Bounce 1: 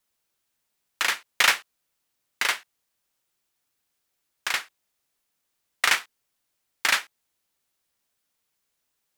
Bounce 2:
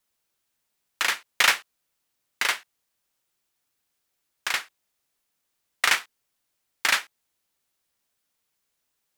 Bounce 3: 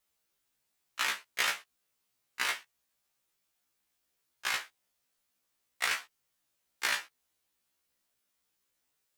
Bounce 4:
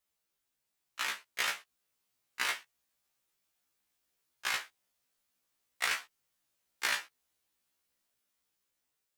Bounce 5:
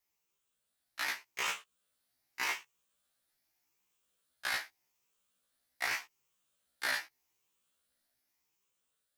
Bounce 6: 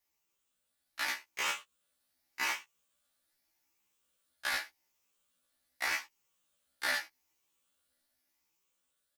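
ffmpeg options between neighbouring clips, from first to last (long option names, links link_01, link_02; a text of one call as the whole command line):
ffmpeg -i in.wav -af anull out.wav
ffmpeg -i in.wav -af "acompressor=threshold=-25dB:ratio=4,afftfilt=real='re*1.73*eq(mod(b,3),0)':imag='im*1.73*eq(mod(b,3),0)':win_size=2048:overlap=0.75" out.wav
ffmpeg -i in.wav -af "dynaudnorm=framelen=600:gausssize=5:maxgain=3.5dB,volume=-4.5dB" out.wav
ffmpeg -i in.wav -filter_complex "[0:a]afftfilt=real='re*pow(10,7/40*sin(2*PI*(0.74*log(max(b,1)*sr/1024/100)/log(2)-(0.84)*(pts-256)/sr)))':imag='im*pow(10,7/40*sin(2*PI*(0.74*log(max(b,1)*sr/1024/100)/log(2)-(0.84)*(pts-256)/sr)))':win_size=1024:overlap=0.75,acrossover=split=1400[link_01][link_02];[link_02]alimiter=level_in=2dB:limit=-24dB:level=0:latency=1:release=25,volume=-2dB[link_03];[link_01][link_03]amix=inputs=2:normalize=0" out.wav
ffmpeg -i in.wav -filter_complex "[0:a]asplit=2[link_01][link_02];[link_02]adelay=12,volume=-4.5dB[link_03];[link_01][link_03]amix=inputs=2:normalize=0" out.wav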